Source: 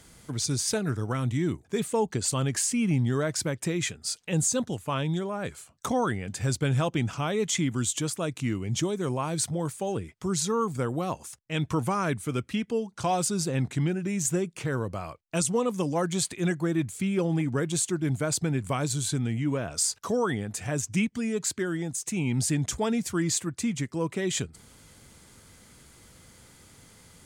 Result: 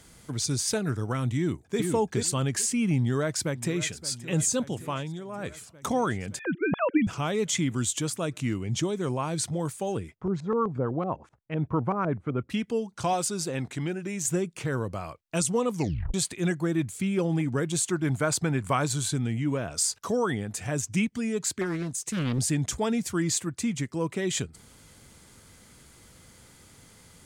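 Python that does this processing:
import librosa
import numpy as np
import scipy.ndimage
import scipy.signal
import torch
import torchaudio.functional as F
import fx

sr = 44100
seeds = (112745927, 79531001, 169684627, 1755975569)

y = fx.echo_throw(x, sr, start_s=1.36, length_s=0.43, ms=430, feedback_pct=15, wet_db=-3.0)
y = fx.echo_throw(y, sr, start_s=2.97, length_s=1.01, ms=570, feedback_pct=75, wet_db=-15.5)
y = fx.sine_speech(y, sr, at=(6.39, 7.07))
y = fx.high_shelf(y, sr, hz=12000.0, db=-9.0, at=(8.63, 9.56))
y = fx.filter_lfo_lowpass(y, sr, shape='saw_up', hz=7.9, low_hz=440.0, high_hz=2100.0, q=1.1, at=(10.15, 12.5))
y = fx.bass_treble(y, sr, bass_db=-7, treble_db=-1, at=(13.13, 14.28))
y = fx.peak_eq(y, sr, hz=1200.0, db=6.5, octaves=1.7, at=(17.86, 19.08))
y = fx.doppler_dist(y, sr, depth_ms=0.78, at=(21.61, 22.39))
y = fx.edit(y, sr, fx.fade_down_up(start_s=4.82, length_s=0.71, db=-8.0, fade_s=0.28),
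    fx.tape_stop(start_s=15.74, length_s=0.4), tone=tone)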